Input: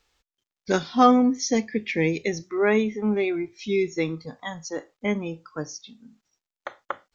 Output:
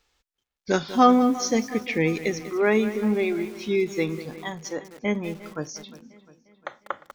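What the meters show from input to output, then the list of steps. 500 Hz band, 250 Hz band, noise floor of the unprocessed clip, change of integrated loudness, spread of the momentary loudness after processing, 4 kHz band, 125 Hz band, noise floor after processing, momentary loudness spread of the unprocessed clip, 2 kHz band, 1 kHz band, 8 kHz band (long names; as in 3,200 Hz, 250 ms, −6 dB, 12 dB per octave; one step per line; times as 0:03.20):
+0.5 dB, 0.0 dB, below −85 dBFS, 0.0 dB, 18 LU, +0.5 dB, 0.0 dB, −84 dBFS, 18 LU, +0.5 dB, +0.5 dB, can't be measured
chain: delay with a low-pass on its return 353 ms, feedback 54%, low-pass 3,300 Hz, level −18 dB
feedback echo at a low word length 195 ms, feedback 35%, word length 6 bits, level −13 dB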